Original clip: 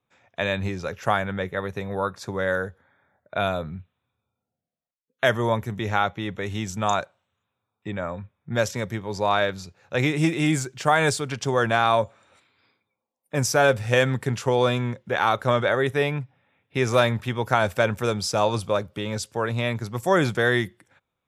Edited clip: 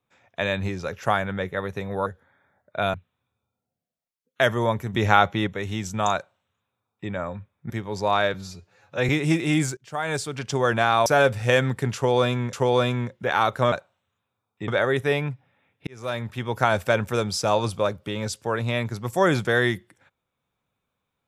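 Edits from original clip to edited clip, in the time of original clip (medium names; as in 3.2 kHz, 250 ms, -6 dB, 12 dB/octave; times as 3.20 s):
2.06–2.64 s: delete
3.52–3.77 s: delete
5.77–6.30 s: gain +5.5 dB
6.97–7.93 s: copy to 15.58 s
8.53–8.88 s: delete
9.52–10.02 s: stretch 1.5×
10.70–11.47 s: fade in, from -21.5 dB
11.99–13.50 s: delete
14.39–14.97 s: loop, 2 plays
16.77–17.51 s: fade in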